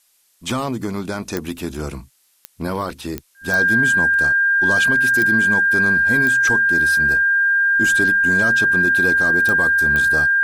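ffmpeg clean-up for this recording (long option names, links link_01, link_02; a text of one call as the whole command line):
ffmpeg -i in.wav -af "adeclick=threshold=4,bandreject=frequency=1600:width=30,agate=range=-21dB:threshold=-43dB" out.wav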